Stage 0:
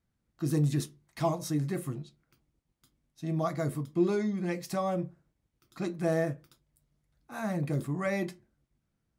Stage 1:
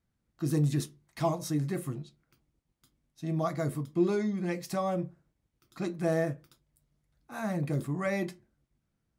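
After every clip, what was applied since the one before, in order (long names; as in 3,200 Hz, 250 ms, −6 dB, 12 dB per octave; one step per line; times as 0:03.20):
no processing that can be heard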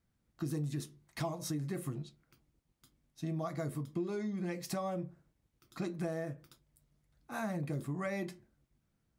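downward compressor 6 to 1, threshold −35 dBFS, peak gain reduction 13.5 dB
level +1 dB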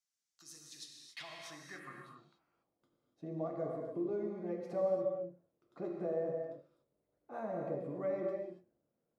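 band-pass filter sweep 6,200 Hz → 510 Hz, 0:00.54–0:02.76
reverb whose tail is shaped and stops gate 310 ms flat, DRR 0.5 dB
level +4 dB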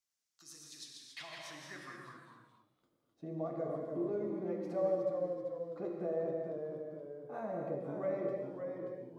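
delay with pitch and tempo change per echo 89 ms, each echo −1 semitone, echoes 2, each echo −6 dB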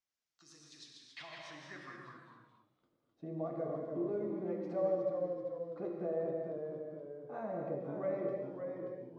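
high-frequency loss of the air 110 metres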